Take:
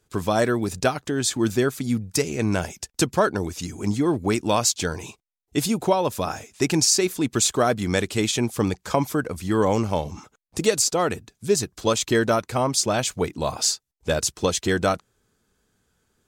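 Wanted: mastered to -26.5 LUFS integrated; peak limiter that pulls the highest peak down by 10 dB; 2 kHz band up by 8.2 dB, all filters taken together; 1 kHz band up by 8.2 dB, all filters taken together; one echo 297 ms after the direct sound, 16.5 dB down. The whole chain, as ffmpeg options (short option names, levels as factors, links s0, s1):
-af "equalizer=f=1000:t=o:g=8.5,equalizer=f=2000:t=o:g=7.5,alimiter=limit=0.316:level=0:latency=1,aecho=1:1:297:0.15,volume=0.631"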